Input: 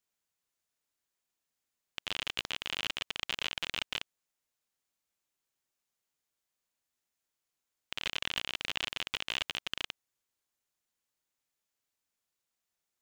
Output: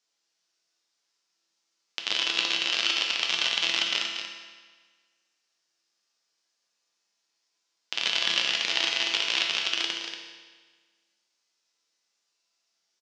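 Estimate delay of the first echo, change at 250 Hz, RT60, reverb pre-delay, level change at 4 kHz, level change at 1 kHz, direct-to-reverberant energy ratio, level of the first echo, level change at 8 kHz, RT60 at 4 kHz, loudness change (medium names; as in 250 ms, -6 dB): 235 ms, +7.5 dB, 1.5 s, 6 ms, +11.0 dB, +8.0 dB, -0.5 dB, -8.0 dB, +11.5 dB, 1.3 s, +10.5 dB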